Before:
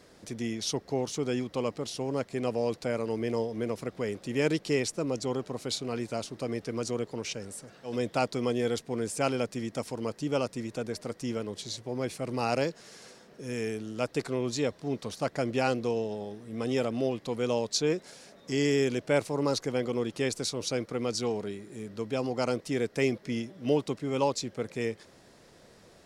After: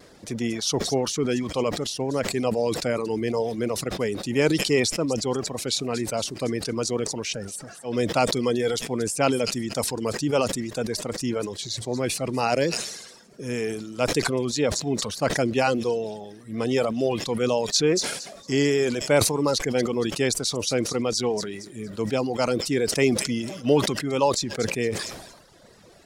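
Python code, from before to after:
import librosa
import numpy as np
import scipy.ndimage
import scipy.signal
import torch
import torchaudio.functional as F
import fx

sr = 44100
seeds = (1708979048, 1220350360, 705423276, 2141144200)

y = fx.vibrato(x, sr, rate_hz=0.58, depth_cents=13.0)
y = fx.echo_wet_highpass(y, sr, ms=230, feedback_pct=39, hz=4100.0, wet_db=-8.0)
y = fx.dereverb_blind(y, sr, rt60_s=1.3)
y = fx.sustainer(y, sr, db_per_s=55.0)
y = y * 10.0 ** (6.5 / 20.0)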